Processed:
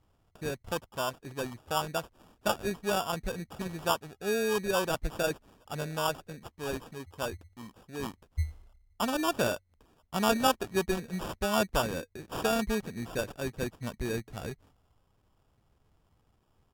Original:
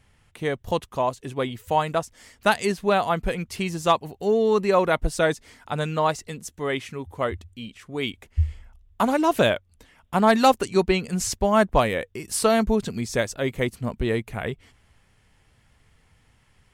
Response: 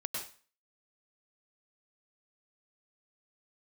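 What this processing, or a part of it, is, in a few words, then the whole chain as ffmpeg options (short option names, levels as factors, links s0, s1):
crushed at another speed: -af "asetrate=55125,aresample=44100,acrusher=samples=17:mix=1:aa=0.000001,asetrate=35280,aresample=44100,volume=0.355"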